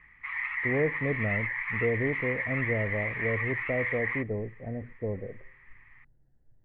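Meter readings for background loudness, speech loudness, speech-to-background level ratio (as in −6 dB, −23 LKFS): −31.0 LKFS, −33.0 LKFS, −2.0 dB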